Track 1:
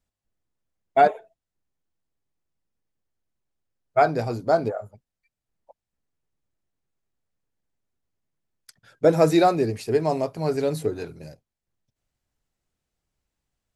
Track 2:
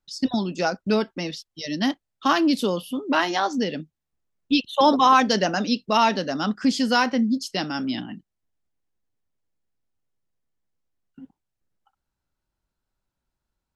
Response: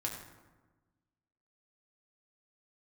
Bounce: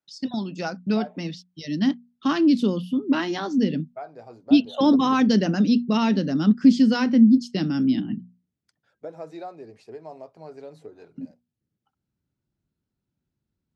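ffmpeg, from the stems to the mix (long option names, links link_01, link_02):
-filter_complex "[0:a]equalizer=frequency=740:width_type=o:width=1.6:gain=6.5,acompressor=threshold=-22dB:ratio=2,volume=-17dB[link_01];[1:a]bandreject=frequency=60:width_type=h:width=6,bandreject=frequency=120:width_type=h:width=6,bandreject=frequency=180:width_type=h:width=6,bandreject=frequency=240:width_type=h:width=6,asubboost=boost=11:cutoff=240,volume=-5dB[link_02];[link_01][link_02]amix=inputs=2:normalize=0,highpass=140,lowpass=6300"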